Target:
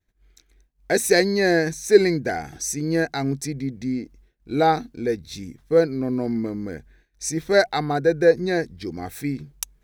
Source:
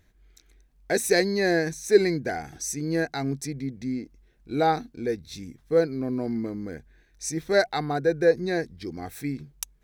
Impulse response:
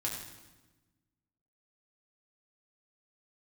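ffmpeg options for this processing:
-af "agate=range=0.0224:threshold=0.00251:ratio=3:detection=peak,volume=1.58"

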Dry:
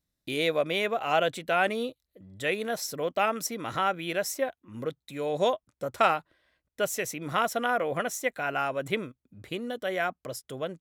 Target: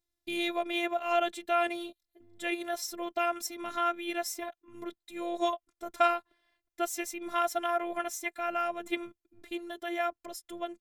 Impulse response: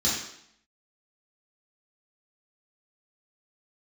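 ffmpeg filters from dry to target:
-af "afftfilt=real='hypot(re,im)*cos(PI*b)':imag='0':win_size=512:overlap=0.75"

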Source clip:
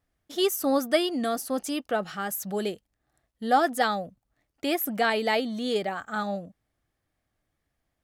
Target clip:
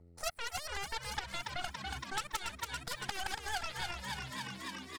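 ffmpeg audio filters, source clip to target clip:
-filter_complex "[0:a]asplit=3[s0][s1][s2];[s0]bandpass=f=730:t=q:w=8,volume=1[s3];[s1]bandpass=f=1090:t=q:w=8,volume=0.501[s4];[s2]bandpass=f=2440:t=q:w=8,volume=0.355[s5];[s3][s4][s5]amix=inputs=3:normalize=0,aeval=exprs='val(0)+0.000891*(sin(2*PI*50*n/s)+sin(2*PI*2*50*n/s)/2+sin(2*PI*3*50*n/s)/3+sin(2*PI*4*50*n/s)/4+sin(2*PI*5*50*n/s)/5)':c=same,atempo=0.93,acrossover=split=250|3100[s6][s7][s8];[s6]acompressor=threshold=0.00141:ratio=4[s9];[s7]acompressor=threshold=0.0251:ratio=4[s10];[s8]acompressor=threshold=0.00158:ratio=4[s11];[s9][s10][s11]amix=inputs=3:normalize=0,superequalizer=7b=3.55:8b=0.282:14b=3.55,aeval=exprs='0.0668*(cos(1*acos(clip(val(0)/0.0668,-1,1)))-cos(1*PI/2))+0.000841*(cos(2*acos(clip(val(0)/0.0668,-1,1)))-cos(2*PI/2))+0.015*(cos(3*acos(clip(val(0)/0.0668,-1,1)))-cos(3*PI/2))+0.0266*(cos(6*acos(clip(val(0)/0.0668,-1,1)))-cos(6*PI/2))+0.0299*(cos(8*acos(clip(val(0)/0.0668,-1,1)))-cos(8*PI/2))':c=same,lowshelf=f=460:g=-4.5,asplit=2[s12][s13];[s13]asplit=8[s14][s15][s16][s17][s18][s19][s20][s21];[s14]adelay=488,afreqshift=37,volume=0.355[s22];[s15]adelay=976,afreqshift=74,volume=0.219[s23];[s16]adelay=1464,afreqshift=111,volume=0.136[s24];[s17]adelay=1952,afreqshift=148,volume=0.0841[s25];[s18]adelay=2440,afreqshift=185,volume=0.0525[s26];[s19]adelay=2928,afreqshift=222,volume=0.0324[s27];[s20]adelay=3416,afreqshift=259,volume=0.0202[s28];[s21]adelay=3904,afreqshift=296,volume=0.0124[s29];[s22][s23][s24][s25][s26][s27][s28][s29]amix=inputs=8:normalize=0[s30];[s12][s30]amix=inputs=2:normalize=0,acompressor=threshold=0.00126:ratio=3,asetrate=76440,aresample=44100,volume=7.5"

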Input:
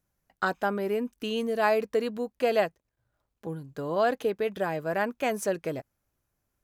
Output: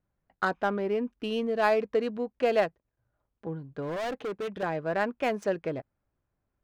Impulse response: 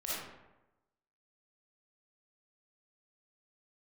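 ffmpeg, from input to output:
-filter_complex "[0:a]adynamicsmooth=sensitivity=5.5:basefreq=2500,equalizer=f=9200:w=0.91:g=-5,asettb=1/sr,asplit=3[s0][s1][s2];[s0]atrim=end=3.824[s3];[s1]atrim=start=3.82:end=4.63,asetpts=PTS-STARTPTS,afade=t=in:d=0.004:c=qsin,afade=t=out:st=0.806:d=0.004:c=qsin,volume=31.6,asoftclip=hard,volume=0.0316[s4];[s2]atrim=start=4.626[s5];[s3][s4]acrossfade=d=0.004:c1=hsin:c2=qsin[s6];[s6][s5]acrossfade=d=0.004:c1=qsin:c2=hsin"

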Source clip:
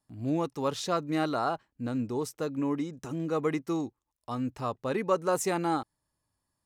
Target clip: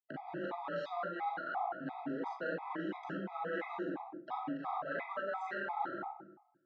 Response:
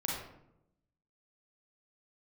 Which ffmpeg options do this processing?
-filter_complex "[0:a]aeval=exprs='sgn(val(0))*max(abs(val(0))-0.00447,0)':c=same,afreqshift=30,acrossover=split=900[s0][s1];[s0]asoftclip=type=tanh:threshold=0.0224[s2];[s2][s1]amix=inputs=2:normalize=0,acompressor=mode=upward:threshold=0.0126:ratio=2.5,highpass=270,equalizer=f=300:t=q:w=4:g=-4,equalizer=f=440:t=q:w=4:g=-6,equalizer=f=760:t=q:w=4:g=7,equalizer=f=1100:t=q:w=4:g=-5,equalizer=f=1600:t=q:w=4:g=8,equalizer=f=2500:t=q:w=4:g=-5,lowpass=f=3100:w=0.5412,lowpass=f=3100:w=1.3066[s3];[1:a]atrim=start_sample=2205[s4];[s3][s4]afir=irnorm=-1:irlink=0,areverse,acompressor=threshold=0.01:ratio=10,areverse,afftfilt=real='re*gt(sin(2*PI*2.9*pts/sr)*(1-2*mod(floor(b*sr/1024/650),2)),0)':imag='im*gt(sin(2*PI*2.9*pts/sr)*(1-2*mod(floor(b*sr/1024/650),2)),0)':win_size=1024:overlap=0.75,volume=2.24"

